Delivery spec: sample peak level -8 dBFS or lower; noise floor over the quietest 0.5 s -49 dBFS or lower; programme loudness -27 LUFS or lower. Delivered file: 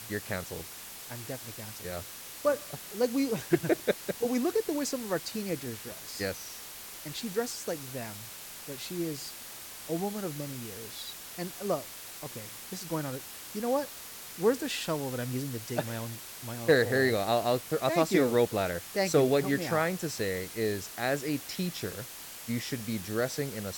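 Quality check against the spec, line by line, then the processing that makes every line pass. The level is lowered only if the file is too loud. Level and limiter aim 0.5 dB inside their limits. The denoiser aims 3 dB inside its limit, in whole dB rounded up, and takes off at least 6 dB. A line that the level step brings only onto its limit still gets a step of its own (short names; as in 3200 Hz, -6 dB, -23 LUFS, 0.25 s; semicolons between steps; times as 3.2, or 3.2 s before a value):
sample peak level -12.5 dBFS: OK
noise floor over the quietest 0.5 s -45 dBFS: fail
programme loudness -32.0 LUFS: OK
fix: denoiser 7 dB, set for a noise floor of -45 dBFS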